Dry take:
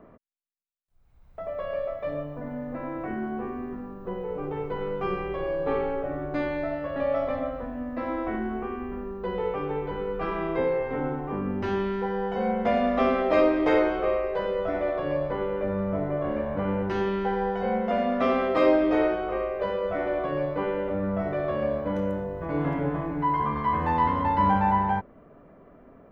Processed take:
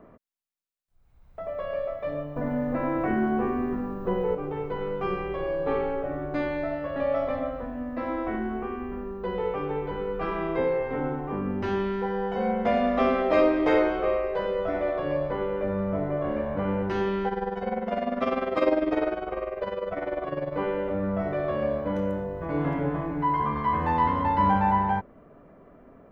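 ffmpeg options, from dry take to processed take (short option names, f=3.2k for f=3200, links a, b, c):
-filter_complex "[0:a]asettb=1/sr,asplit=3[a][b][c];[a]atrim=end=2.364[d];[b]atrim=start=2.36:end=4.35,asetpts=PTS-STARTPTS,afade=t=in:d=0.004:c=qsin,afade=t=out:st=1.986:d=0.004:c=qsin,acontrast=68[e];[c]atrim=start=4.346[f];[d][e]acrossfade=d=0.004:c1=hsin:c2=qsin[g];[g][f]acrossfade=d=0.004:c1=qsin:c2=hsin,asettb=1/sr,asplit=3[h][i][j];[h]atrim=end=17.284[k];[i]atrim=start=17.28:end=20.54,asetpts=PTS-STARTPTS,afade=t=in:d=0.004:c=qsin,afade=t=out:st=3.256:d=0.004:c=qsin,tremolo=f=20:d=0.71[l];[j]atrim=start=20.536[m];[k][l]acrossfade=d=0.004:c1=hsin:c2=qsin[n];[n][m]acrossfade=d=0.004:c1=qsin:c2=hsin"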